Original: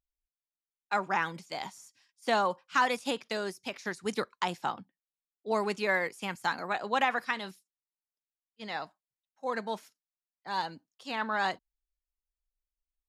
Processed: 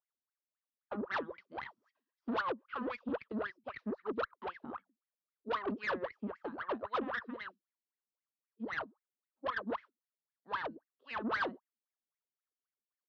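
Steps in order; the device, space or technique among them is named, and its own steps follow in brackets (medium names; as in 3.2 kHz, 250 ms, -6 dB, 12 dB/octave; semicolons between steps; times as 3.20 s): wah-wah guitar rig (wah-wah 3.8 Hz 210–2200 Hz, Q 16; valve stage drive 47 dB, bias 0.45; cabinet simulation 91–3900 Hz, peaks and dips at 170 Hz -9 dB, 310 Hz -3 dB, 770 Hz -8 dB, 1.2 kHz +4 dB, 2.2 kHz -8 dB); trim +17.5 dB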